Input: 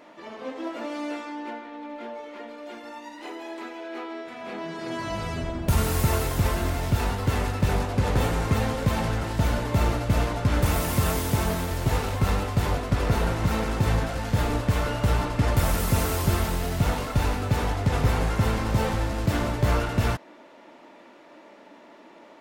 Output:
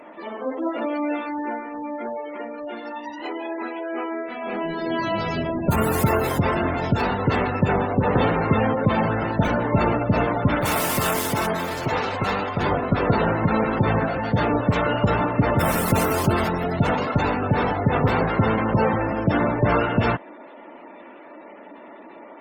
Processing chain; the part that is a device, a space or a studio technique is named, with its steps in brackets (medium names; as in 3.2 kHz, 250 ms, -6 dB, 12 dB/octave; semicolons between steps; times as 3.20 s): 10.55–12.60 s: bass shelf 400 Hz -7 dB; noise-suppressed video call (high-pass 150 Hz 12 dB/octave; spectral gate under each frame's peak -20 dB strong; trim +7.5 dB; Opus 20 kbps 48 kHz)